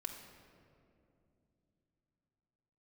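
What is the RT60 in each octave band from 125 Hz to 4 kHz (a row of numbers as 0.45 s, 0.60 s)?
4.5 s, 4.1 s, 3.2 s, 2.3 s, 1.8 s, 1.3 s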